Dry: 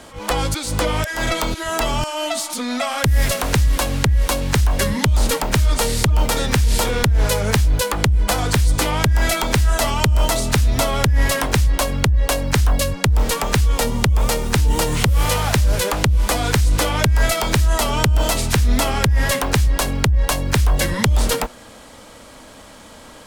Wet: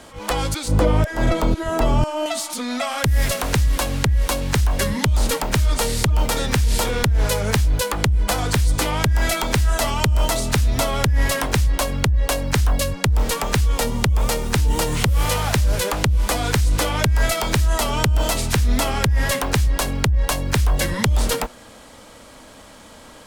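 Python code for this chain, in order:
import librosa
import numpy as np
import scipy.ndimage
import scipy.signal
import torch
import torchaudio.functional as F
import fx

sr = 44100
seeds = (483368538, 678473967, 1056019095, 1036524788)

y = fx.tilt_shelf(x, sr, db=8.0, hz=1100.0, at=(0.68, 2.26))
y = F.gain(torch.from_numpy(y), -2.0).numpy()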